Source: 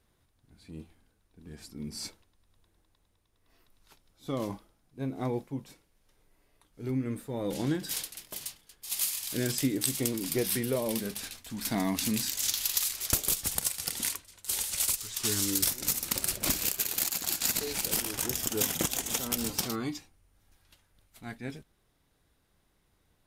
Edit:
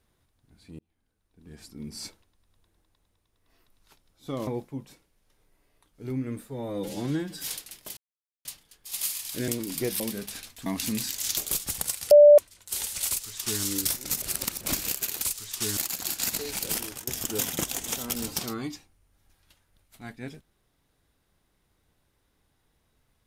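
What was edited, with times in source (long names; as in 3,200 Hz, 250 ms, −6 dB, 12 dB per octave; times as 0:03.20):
0:00.79–0:01.59: fade in
0:04.47–0:05.26: remove
0:07.26–0:07.92: time-stretch 1.5×
0:08.43: splice in silence 0.48 s
0:09.46–0:10.02: remove
0:10.54–0:10.88: remove
0:11.54–0:11.85: remove
0:12.56–0:13.14: remove
0:13.88–0:14.15: beep over 588 Hz −9 dBFS
0:14.85–0:15.40: duplicate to 0:16.99
0:15.99–0:16.38: reverse
0:18.04–0:18.29: fade out, to −19.5 dB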